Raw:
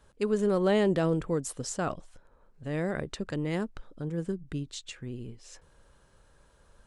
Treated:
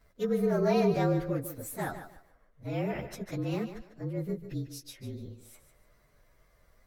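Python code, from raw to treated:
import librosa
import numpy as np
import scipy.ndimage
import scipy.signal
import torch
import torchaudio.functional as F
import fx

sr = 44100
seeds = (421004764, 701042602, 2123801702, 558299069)

p1 = fx.partial_stretch(x, sr, pct=113)
y = p1 + fx.echo_thinned(p1, sr, ms=148, feedback_pct=25, hz=150.0, wet_db=-10.5, dry=0)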